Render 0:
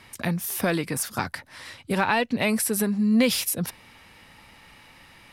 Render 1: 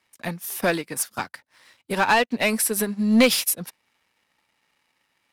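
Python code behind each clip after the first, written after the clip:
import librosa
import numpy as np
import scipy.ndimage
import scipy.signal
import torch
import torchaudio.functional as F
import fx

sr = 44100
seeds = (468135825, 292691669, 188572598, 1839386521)

y = fx.highpass(x, sr, hz=320.0, slope=6)
y = fx.leveller(y, sr, passes=2)
y = fx.upward_expand(y, sr, threshold_db=-30.0, expansion=2.5)
y = F.gain(torch.from_numpy(y), 2.5).numpy()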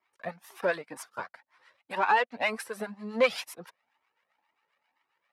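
y = fx.harmonic_tremolo(x, sr, hz=7.5, depth_pct=70, crossover_hz=770.0)
y = fx.bandpass_q(y, sr, hz=940.0, q=0.85)
y = fx.comb_cascade(y, sr, direction='rising', hz=2.0)
y = F.gain(torch.from_numpy(y), 5.5).numpy()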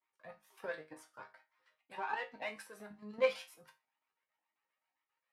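y = fx.level_steps(x, sr, step_db=10)
y = fx.resonator_bank(y, sr, root=44, chord='major', decay_s=0.25)
y = F.gain(torch.from_numpy(y), 3.5).numpy()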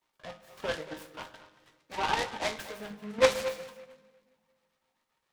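y = x + 10.0 ** (-14.5 / 20.0) * np.pad(x, (int(230 * sr / 1000.0), 0))[:len(x)]
y = fx.room_shoebox(y, sr, seeds[0], volume_m3=1900.0, walls='mixed', distance_m=0.43)
y = fx.noise_mod_delay(y, sr, seeds[1], noise_hz=1500.0, depth_ms=0.083)
y = F.gain(torch.from_numpy(y), 9.0).numpy()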